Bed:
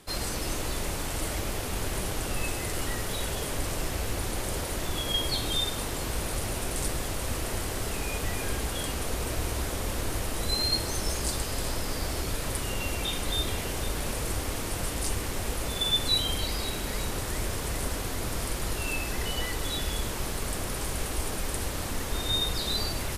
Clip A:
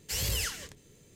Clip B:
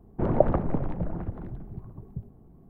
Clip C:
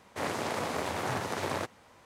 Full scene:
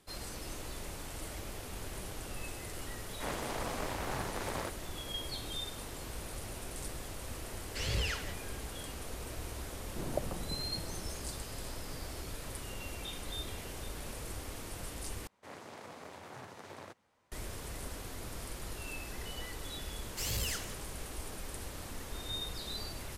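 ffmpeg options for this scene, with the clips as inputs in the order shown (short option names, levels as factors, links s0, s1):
-filter_complex "[3:a]asplit=2[s0][s1];[1:a]asplit=2[s2][s3];[0:a]volume=0.266[s4];[s2]lowpass=3800[s5];[s3]aeval=exprs='if(lt(val(0),0),0.708*val(0),val(0))':c=same[s6];[s4]asplit=2[s7][s8];[s7]atrim=end=15.274[s9];[s1]atrim=end=2.05,asetpts=PTS-STARTPTS,volume=0.158[s10];[s8]atrim=start=17.316[s11];[s0]atrim=end=2.05,asetpts=PTS-STARTPTS,volume=0.501,afade=t=in:d=0.004:c=hsin,afade=t=out:st=2.046:d=0.004:c=hsin,adelay=3040[s12];[s5]atrim=end=1.15,asetpts=PTS-STARTPTS,volume=0.944,afade=t=in:d=0.004:c=hsin,afade=t=out:st=1.146:d=0.004:c=hsin,adelay=7660[s13];[2:a]atrim=end=2.69,asetpts=PTS-STARTPTS,volume=0.168,afade=t=in:d=0.004:c=hsin,afade=t=out:st=2.686:d=0.004:c=hsin,adelay=9770[s14];[s6]atrim=end=1.15,asetpts=PTS-STARTPTS,volume=0.668,afade=t=in:d=0.004:c=hsin,afade=t=out:st=1.146:d=0.004:c=hsin,adelay=20080[s15];[s9][s10]acrossfade=d=0.004:c1=hsin:c2=hsin[s16];[s16][s11]acrossfade=d=0.004:c1=hsin:c2=hsin[s17];[s17][s12][s13][s14][s15]amix=inputs=5:normalize=0"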